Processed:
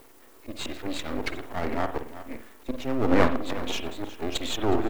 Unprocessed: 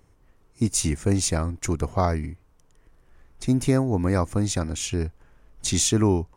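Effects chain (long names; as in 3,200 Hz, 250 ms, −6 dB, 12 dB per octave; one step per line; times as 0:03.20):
delay that plays each chunk backwards 438 ms, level −10.5 dB
Butterworth low-pass 4,200 Hz 72 dB per octave
volume swells 459 ms
Chebyshev high-pass filter 240 Hz, order 5
background noise blue −71 dBFS
tempo change 1.3×
half-wave rectification
on a send: single-tap delay 365 ms −18 dB
on the sum: convolution reverb, pre-delay 48 ms, DRR 8.5 dB
in parallel at +2 dB: downward compressor, threshold −42 dBFS, peak gain reduction 18 dB
on the sum: level +9 dB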